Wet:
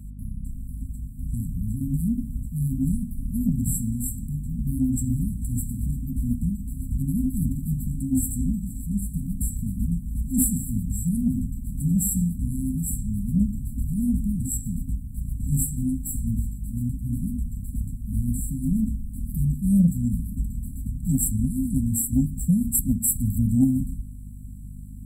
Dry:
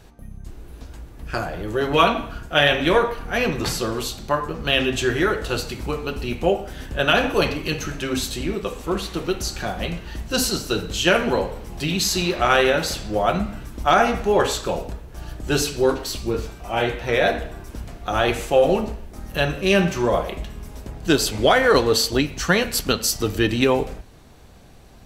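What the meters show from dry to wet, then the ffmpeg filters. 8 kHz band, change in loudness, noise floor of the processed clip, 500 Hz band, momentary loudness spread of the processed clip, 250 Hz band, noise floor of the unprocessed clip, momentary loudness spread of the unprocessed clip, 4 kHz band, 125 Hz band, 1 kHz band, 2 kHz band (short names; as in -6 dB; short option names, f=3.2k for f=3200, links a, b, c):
0.0 dB, -5.0 dB, -36 dBFS, under -40 dB, 10 LU, +1.5 dB, -43 dBFS, 13 LU, under -40 dB, +4.5 dB, under -40 dB, under -40 dB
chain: -af "afftfilt=real='re*(1-between(b*sr/4096,270,7500))':imag='im*(1-between(b*sr/4096,270,7500))':win_size=4096:overlap=0.75,aeval=exprs='val(0)+0.00794*(sin(2*PI*50*n/s)+sin(2*PI*2*50*n/s)/2+sin(2*PI*3*50*n/s)/3+sin(2*PI*4*50*n/s)/4+sin(2*PI*5*50*n/s)/5)':c=same,acontrast=76,volume=-2.5dB"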